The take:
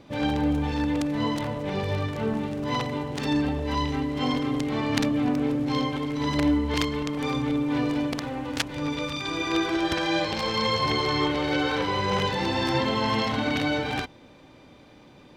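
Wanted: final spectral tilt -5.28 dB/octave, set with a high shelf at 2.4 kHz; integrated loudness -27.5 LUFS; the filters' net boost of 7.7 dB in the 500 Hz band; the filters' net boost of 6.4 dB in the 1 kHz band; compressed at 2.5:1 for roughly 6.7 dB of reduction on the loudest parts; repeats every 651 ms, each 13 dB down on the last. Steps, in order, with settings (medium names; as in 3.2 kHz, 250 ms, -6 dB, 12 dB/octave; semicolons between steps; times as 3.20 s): peaking EQ 500 Hz +8 dB; peaking EQ 1 kHz +6.5 dB; treble shelf 2.4 kHz -8.5 dB; compression 2.5:1, threshold -26 dBFS; feedback delay 651 ms, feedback 22%, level -13 dB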